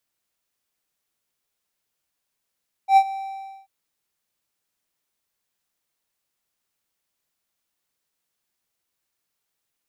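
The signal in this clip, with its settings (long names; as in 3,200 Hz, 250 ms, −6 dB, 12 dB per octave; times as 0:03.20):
note with an ADSR envelope triangle 778 Hz, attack 87 ms, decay 64 ms, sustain −18 dB, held 0.22 s, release 569 ms −6.5 dBFS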